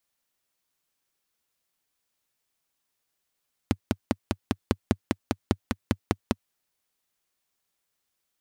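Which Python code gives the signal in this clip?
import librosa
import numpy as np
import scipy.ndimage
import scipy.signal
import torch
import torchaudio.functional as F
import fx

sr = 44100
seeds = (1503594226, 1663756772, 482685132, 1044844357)

y = fx.engine_single(sr, seeds[0], length_s=2.68, rpm=600, resonances_hz=(97.0, 230.0))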